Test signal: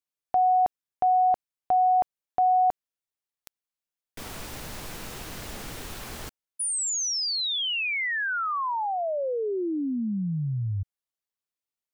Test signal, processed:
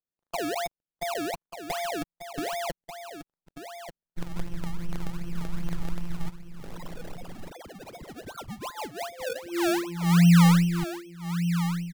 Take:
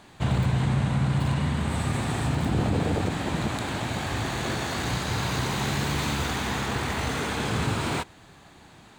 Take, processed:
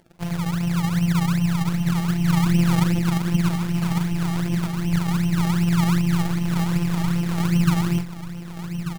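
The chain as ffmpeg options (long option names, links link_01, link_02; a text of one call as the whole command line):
ffmpeg -i in.wav -filter_complex "[0:a]asubboost=boost=8:cutoff=210,acrossover=split=220|1000[link_01][link_02][link_03];[link_03]acompressor=threshold=-40dB:ratio=10:attack=4.1:release=593:detection=rms[link_04];[link_01][link_02][link_04]amix=inputs=3:normalize=0,afftfilt=real='hypot(re,im)*cos(PI*b)':imag='0':win_size=1024:overlap=0.75,acrusher=samples=30:mix=1:aa=0.000001:lfo=1:lforange=30:lforate=2.6,aecho=1:1:1189:0.316" out.wav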